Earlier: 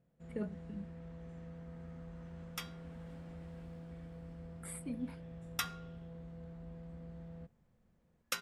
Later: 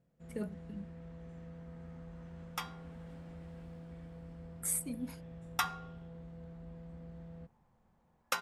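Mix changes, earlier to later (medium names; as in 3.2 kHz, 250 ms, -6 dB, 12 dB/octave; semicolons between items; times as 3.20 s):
speech: remove boxcar filter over 7 samples; second sound: add peaking EQ 860 Hz +15 dB 1.1 oct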